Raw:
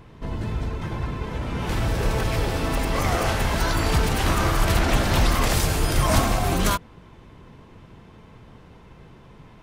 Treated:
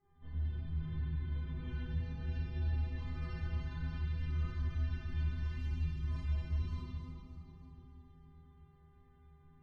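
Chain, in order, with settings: expander -39 dBFS; amplifier tone stack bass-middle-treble 6-0-2; compression 6:1, threshold -41 dBFS, peak gain reduction 13 dB; mains buzz 400 Hz, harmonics 5, -73 dBFS -4 dB/octave; inharmonic resonator 75 Hz, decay 0.51 s, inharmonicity 0.03; feedback echo behind a high-pass 299 ms, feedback 55%, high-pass 3.8 kHz, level -8 dB; loudest bins only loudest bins 64; distance through air 250 m; simulated room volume 140 m³, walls hard, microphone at 1.5 m; trim +4.5 dB

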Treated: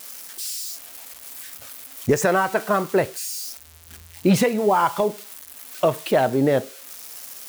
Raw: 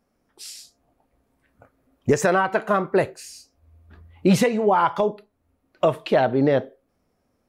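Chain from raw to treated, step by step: zero-crossing glitches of -26 dBFS

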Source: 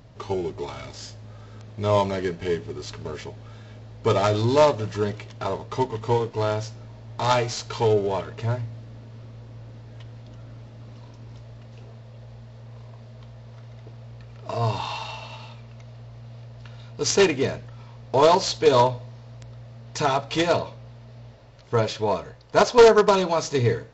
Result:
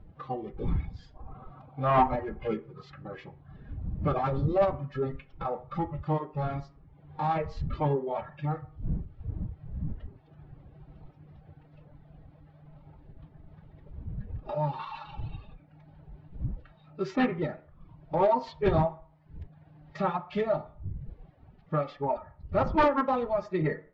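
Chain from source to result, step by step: wind noise 110 Hz -34 dBFS; spectral noise reduction 7 dB; time-frequency box 1.16–2.51 s, 530–1300 Hz +12 dB; reverb removal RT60 0.69 s; dynamic bell 3.2 kHz, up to -5 dB, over -43 dBFS, Q 1.2; in parallel at 0 dB: compression 5:1, threshold -30 dBFS, peak gain reduction 21 dB; on the sum: formant-preserving pitch shift +4.5 st; saturation -8.5 dBFS, distortion -14 dB; distance through air 430 m; on a send at -7.5 dB: reverberation RT60 0.45 s, pre-delay 3 ms; on the sum: trim -6.5 dB

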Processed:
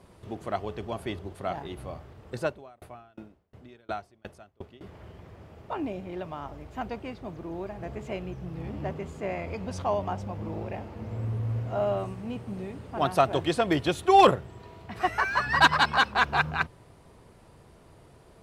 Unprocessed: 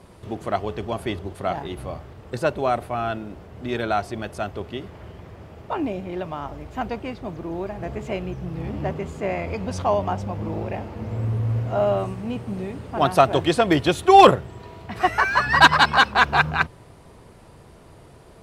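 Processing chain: 2.46–4.81 s: sawtooth tremolo in dB decaying 2.8 Hz, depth 34 dB; trim -6.5 dB

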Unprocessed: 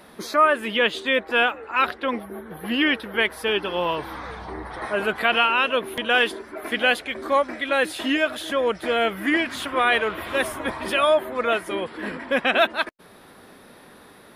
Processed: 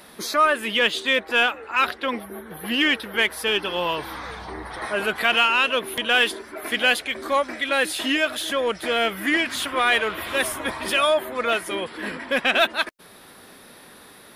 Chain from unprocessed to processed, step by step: treble shelf 2.3 kHz +9 dB; in parallel at -7 dB: saturation -17.5 dBFS, distortion -9 dB; on the sum: trim -4.5 dB

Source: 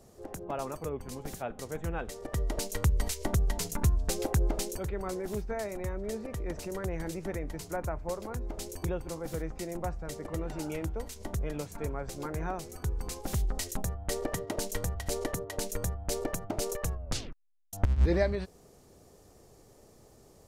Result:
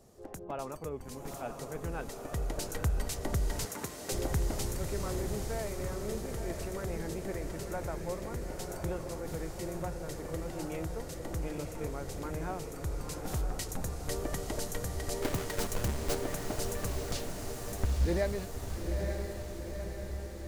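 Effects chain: 15.22–16.15 s: square wave that keeps the level; echo that smears into a reverb 909 ms, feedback 62%, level -5 dB; in parallel at -6 dB: saturation -23 dBFS, distortion -15 dB; 3.65–4.12 s: on the sum: high-pass 260 Hz 12 dB/octave; trim -6.5 dB

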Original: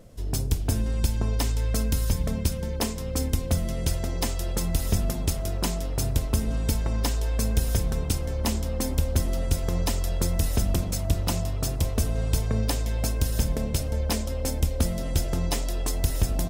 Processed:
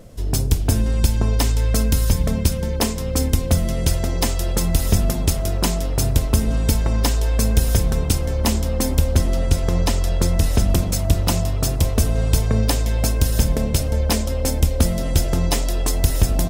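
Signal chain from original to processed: 9.16–10.70 s: treble shelf 11 kHz -10 dB; trim +7 dB

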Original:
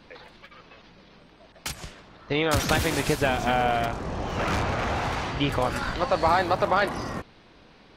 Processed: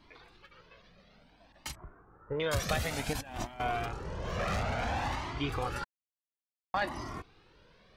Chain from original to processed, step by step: 1.75–2.40 s: Chebyshev low-pass 1.5 kHz, order 4; 3.13–3.60 s: compressor with a negative ratio -30 dBFS, ratio -0.5; 4.24–5.16 s: waveshaping leveller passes 1; 5.84–6.74 s: mute; Shepard-style flanger rising 0.57 Hz; trim -4 dB

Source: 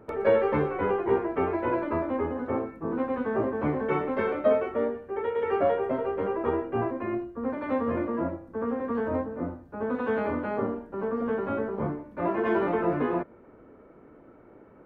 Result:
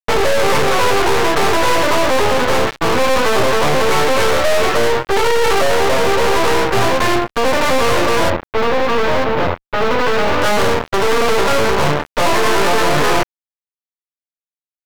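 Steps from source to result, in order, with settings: graphic EQ 125/250/500/1000/2000 Hz +9/-9/+7/+8/+8 dB; fuzz box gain 36 dB, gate -36 dBFS; 8.30–10.42 s: distance through air 220 m; half-wave rectifier; decimation joined by straight lines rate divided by 2×; trim +5 dB

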